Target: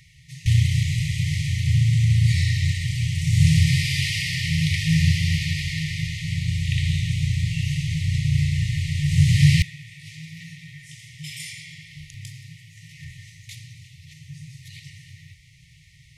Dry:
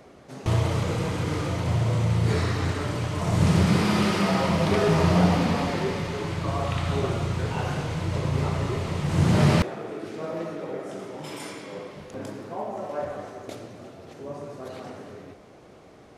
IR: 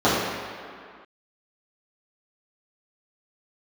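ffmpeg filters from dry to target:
-af "afftfilt=real='re*(1-between(b*sr/4096,170,1800))':imag='im*(1-between(b*sr/4096,170,1800))':win_size=4096:overlap=0.75,volume=6dB"

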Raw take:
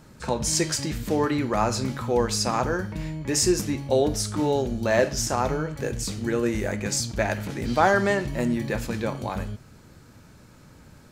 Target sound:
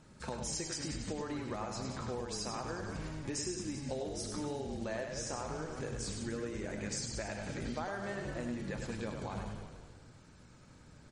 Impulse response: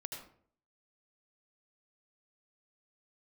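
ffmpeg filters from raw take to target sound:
-filter_complex "[0:a]acrusher=bits=5:mode=log:mix=0:aa=0.000001,asplit=2[a][b];[b]asplit=5[c][d][e][f][g];[c]adelay=179,afreqshift=-50,volume=-11dB[h];[d]adelay=358,afreqshift=-100,volume=-17.4dB[i];[e]adelay=537,afreqshift=-150,volume=-23.8dB[j];[f]adelay=716,afreqshift=-200,volume=-30.1dB[k];[g]adelay=895,afreqshift=-250,volume=-36.5dB[l];[h][i][j][k][l]amix=inputs=5:normalize=0[m];[a][m]amix=inputs=2:normalize=0,acompressor=threshold=-27dB:ratio=10,asplit=2[n][o];[o]aecho=0:1:100:0.531[p];[n][p]amix=inputs=2:normalize=0,volume=-8.5dB" -ar 44100 -c:a libmp3lame -b:a 40k

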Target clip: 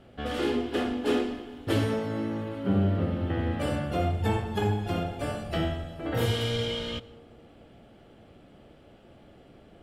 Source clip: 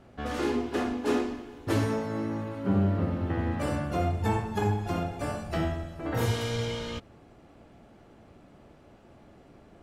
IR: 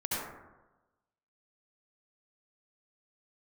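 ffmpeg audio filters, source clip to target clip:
-filter_complex "[0:a]equalizer=f=500:t=o:w=0.33:g=3,equalizer=f=1k:t=o:w=0.33:g=-6,equalizer=f=3.15k:t=o:w=0.33:g=8,equalizer=f=6.3k:t=o:w=0.33:g=-6,asplit=2[a][b];[1:a]atrim=start_sample=2205,asetrate=27783,aresample=44100[c];[b][c]afir=irnorm=-1:irlink=0,volume=-27dB[d];[a][d]amix=inputs=2:normalize=0"

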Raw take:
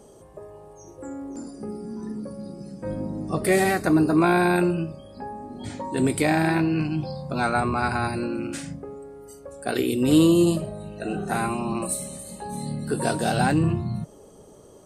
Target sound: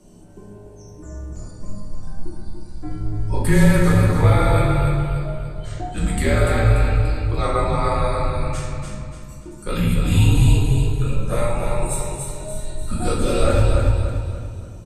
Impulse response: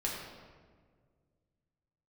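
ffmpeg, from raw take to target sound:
-filter_complex "[0:a]afreqshift=-210,aecho=1:1:291|582|873|1164|1455:0.562|0.231|0.0945|0.0388|0.0159[a];[1:a]atrim=start_sample=2205,asetrate=66150,aresample=44100[b];[a][b]afir=irnorm=-1:irlink=0,volume=1.5dB"

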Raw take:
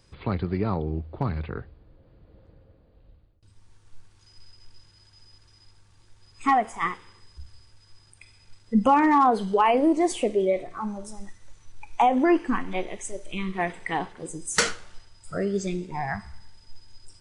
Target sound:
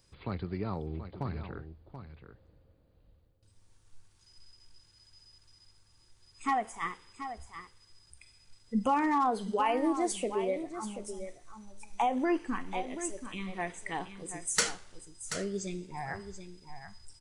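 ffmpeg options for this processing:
-filter_complex "[0:a]highshelf=f=5.7k:g=10.5,asplit=2[a][b];[b]aecho=0:1:732:0.299[c];[a][c]amix=inputs=2:normalize=0,volume=-9dB"

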